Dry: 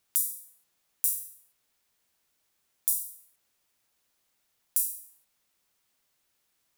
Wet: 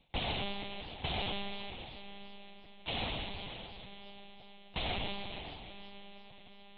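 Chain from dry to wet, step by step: square wave that keeps the level; peaking EQ 160 Hz +12 dB 1 oct; reverse; compression 8:1, threshold -33 dBFS, peak gain reduction 14.5 dB; reverse; static phaser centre 390 Hz, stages 6; on a send: echo that smears into a reverb 486 ms, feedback 42%, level -10 dB; on the sum: algorithmic reverb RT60 1.5 s, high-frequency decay 0.85×, pre-delay 60 ms, DRR 0 dB; monotone LPC vocoder at 8 kHz 200 Hz; modulated delay 323 ms, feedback 34%, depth 199 cents, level -16.5 dB; trim +17 dB

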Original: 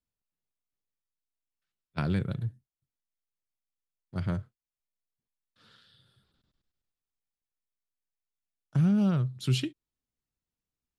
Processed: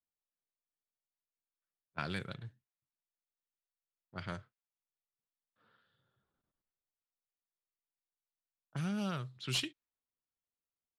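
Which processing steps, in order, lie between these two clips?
level-controlled noise filter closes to 900 Hz, open at -23.5 dBFS; pre-emphasis filter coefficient 0.9; overdrive pedal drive 11 dB, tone 1.7 kHz, clips at -25 dBFS; trim +9.5 dB

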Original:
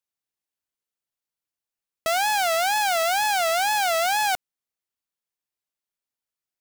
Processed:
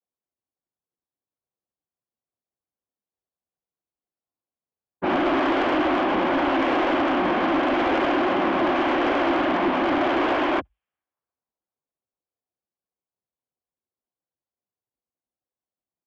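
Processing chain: level-controlled noise filter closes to 1.3 kHz, open at -23 dBFS; noise-vocoded speech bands 12; peaking EQ 2.3 kHz +7.5 dB 2.3 oct; saturation -16 dBFS, distortion -14 dB; wide varispeed 0.411×

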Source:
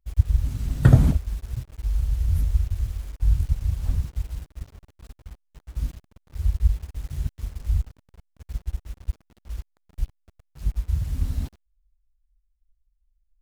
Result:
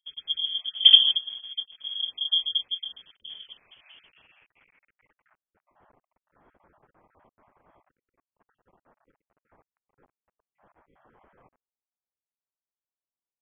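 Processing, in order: random holes in the spectrogram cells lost 28%; high-pass sweep 93 Hz -> 2.5 kHz, 2.59–5.54 s; frequency inversion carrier 3.3 kHz; trim -6.5 dB

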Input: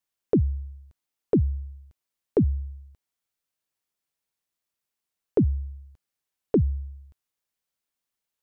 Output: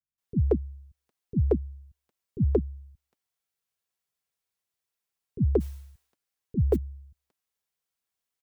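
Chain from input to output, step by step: 5.42–6.58 s: modulation noise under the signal 31 dB; comb of notches 300 Hz; bands offset in time lows, highs 180 ms, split 230 Hz

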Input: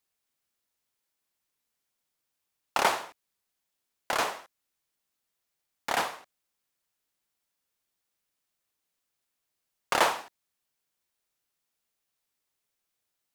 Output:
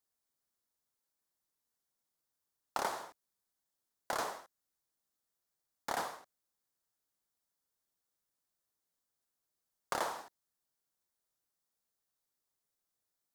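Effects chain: compression 6:1, threshold -26 dBFS, peak gain reduction 8.5 dB; peaking EQ 2.6 kHz -10.5 dB 0.78 oct; trim -4 dB

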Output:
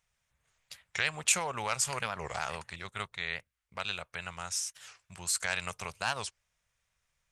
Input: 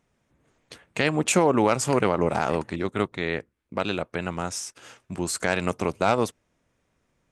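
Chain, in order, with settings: amplifier tone stack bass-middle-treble 10-0-10; warped record 45 rpm, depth 250 cents

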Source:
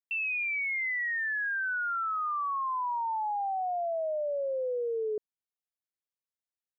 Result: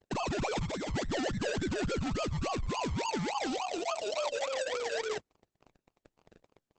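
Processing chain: 0.62–0.90 s: time-frequency box 200–2200 Hz -10 dB; 0.59–1.34 s: treble shelf 2 kHz +11 dB; hum notches 50/100 Hz; peak limiter -29.5 dBFS, peak gain reduction 7.5 dB; crackle 220 per s -47 dBFS; decimation with a swept rate 33×, swing 60% 3.5 Hz; 3.45–4.36 s: Butterworth band-stop 1.7 kHz, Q 2.3; Opus 10 kbps 48 kHz

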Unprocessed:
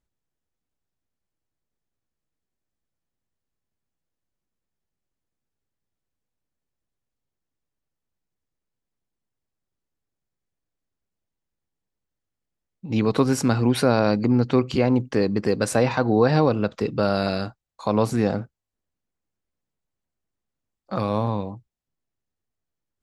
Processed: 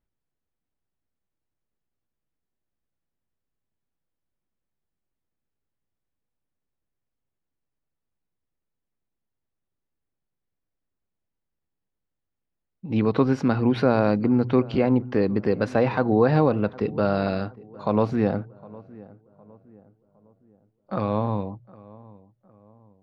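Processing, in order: distance through air 270 m; hum notches 60/120 Hz; on a send: filtered feedback delay 760 ms, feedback 43%, low-pass 1.4 kHz, level -21 dB

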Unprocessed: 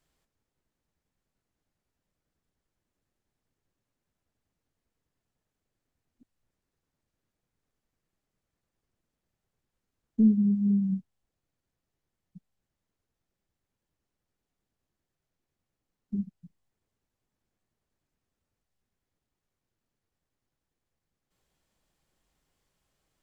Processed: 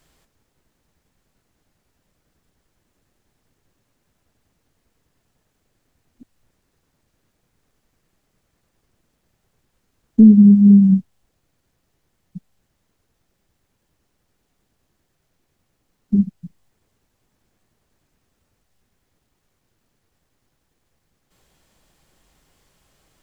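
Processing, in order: loudness maximiser +16.5 dB; trim -1 dB

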